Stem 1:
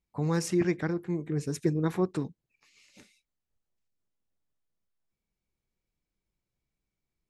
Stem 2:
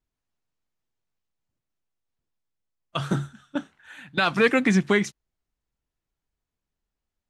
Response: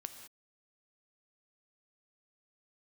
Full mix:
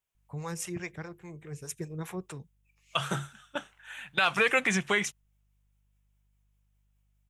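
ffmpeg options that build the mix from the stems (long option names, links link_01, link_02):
-filter_complex "[0:a]acrossover=split=420[link_01][link_02];[link_01]aeval=exprs='val(0)*(1-0.7/2+0.7/2*cos(2*PI*4.9*n/s))':channel_layout=same[link_03];[link_02]aeval=exprs='val(0)*(1-0.7/2-0.7/2*cos(2*PI*4.9*n/s))':channel_layout=same[link_04];[link_03][link_04]amix=inputs=2:normalize=0,aeval=exprs='val(0)+0.000447*(sin(2*PI*50*n/s)+sin(2*PI*2*50*n/s)/2+sin(2*PI*3*50*n/s)/3+sin(2*PI*4*50*n/s)/4+sin(2*PI*5*50*n/s)/5)':channel_layout=same,adelay=150,volume=-1.5dB[link_05];[1:a]highpass=frequency=240:poles=1,highshelf=frequency=6000:gain=-5,alimiter=limit=-14dB:level=0:latency=1:release=42,volume=1dB[link_06];[link_05][link_06]amix=inputs=2:normalize=0,equalizer=frequency=270:width_type=o:width=0.91:gain=-14.5,aexciter=amount=1.7:drive=1.3:freq=2400"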